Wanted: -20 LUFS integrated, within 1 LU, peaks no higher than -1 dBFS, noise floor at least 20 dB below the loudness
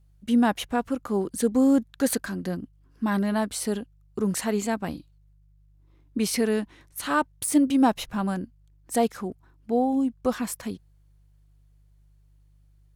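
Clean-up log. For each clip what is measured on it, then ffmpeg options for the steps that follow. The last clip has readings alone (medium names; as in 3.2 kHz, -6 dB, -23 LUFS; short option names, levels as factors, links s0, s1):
hum 50 Hz; highest harmonic 150 Hz; hum level -55 dBFS; loudness -26.0 LUFS; peak level -9.0 dBFS; loudness target -20.0 LUFS
-> -af "bandreject=f=50:t=h:w=4,bandreject=f=100:t=h:w=4,bandreject=f=150:t=h:w=4"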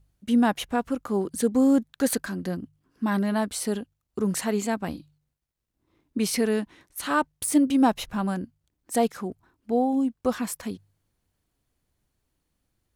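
hum not found; loudness -26.0 LUFS; peak level -9.0 dBFS; loudness target -20.0 LUFS
-> -af "volume=2"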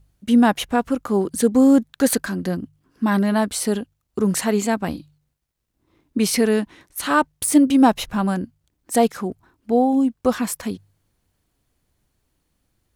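loudness -20.0 LUFS; peak level -3.0 dBFS; noise floor -74 dBFS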